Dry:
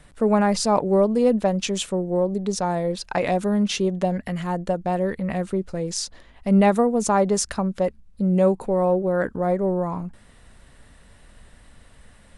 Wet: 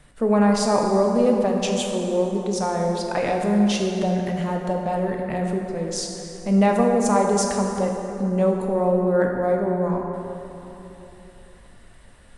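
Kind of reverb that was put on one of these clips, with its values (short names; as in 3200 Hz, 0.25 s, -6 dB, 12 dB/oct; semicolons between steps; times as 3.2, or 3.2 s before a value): plate-style reverb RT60 3.4 s, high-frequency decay 0.55×, DRR 1 dB; gain -2 dB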